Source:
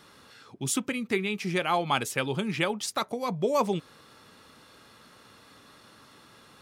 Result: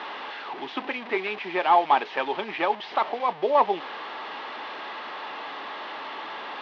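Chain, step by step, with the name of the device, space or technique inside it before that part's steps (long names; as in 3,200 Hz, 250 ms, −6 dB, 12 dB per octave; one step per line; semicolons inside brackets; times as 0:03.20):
digital answering machine (band-pass filter 300–3,100 Hz; linear delta modulator 32 kbit/s, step −35 dBFS; loudspeaker in its box 440–3,200 Hz, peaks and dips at 500 Hz −6 dB, 850 Hz +5 dB, 1,400 Hz −7 dB, 2,400 Hz −4 dB)
level +8 dB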